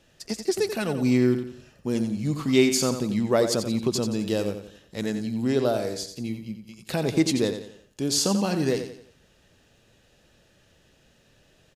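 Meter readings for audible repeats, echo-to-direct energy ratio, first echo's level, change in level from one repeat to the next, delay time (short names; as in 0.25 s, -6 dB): 4, -8.5 dB, -9.0 dB, -8.0 dB, 88 ms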